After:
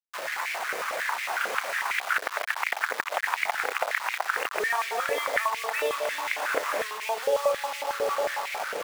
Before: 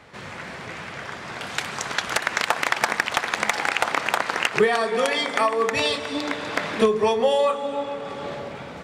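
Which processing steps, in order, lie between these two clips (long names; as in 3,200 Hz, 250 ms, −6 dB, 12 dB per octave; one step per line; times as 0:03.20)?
downward compressor 6 to 1, threshold −28 dBFS, peak gain reduction 13.5 dB
low-pass filter 2,900 Hz 24 dB per octave
bit-depth reduction 6 bits, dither none
high-pass on a step sequencer 11 Hz 480–2,200 Hz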